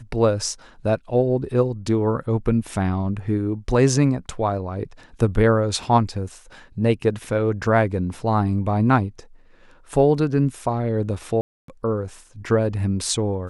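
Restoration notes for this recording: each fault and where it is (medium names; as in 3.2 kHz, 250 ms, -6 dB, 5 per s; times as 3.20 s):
11.41–11.68 s: dropout 273 ms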